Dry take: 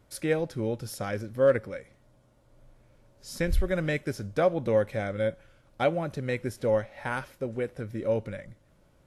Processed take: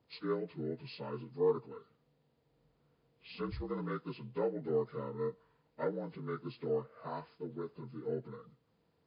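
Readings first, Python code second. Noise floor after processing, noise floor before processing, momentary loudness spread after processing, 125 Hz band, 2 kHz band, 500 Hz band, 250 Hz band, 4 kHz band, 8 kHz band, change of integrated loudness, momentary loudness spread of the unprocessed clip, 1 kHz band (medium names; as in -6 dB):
-76 dBFS, -63 dBFS, 11 LU, -11.0 dB, -17.5 dB, -9.5 dB, -8.5 dB, -10.0 dB, under -35 dB, -9.5 dB, 9 LU, -9.0 dB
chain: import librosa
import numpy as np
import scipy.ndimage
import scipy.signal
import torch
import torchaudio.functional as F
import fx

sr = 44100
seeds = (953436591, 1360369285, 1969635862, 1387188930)

y = fx.partial_stretch(x, sr, pct=77)
y = scipy.signal.sosfilt(scipy.signal.butter(2, 100.0, 'highpass', fs=sr, output='sos'), y)
y = y * librosa.db_to_amplitude(-8.5)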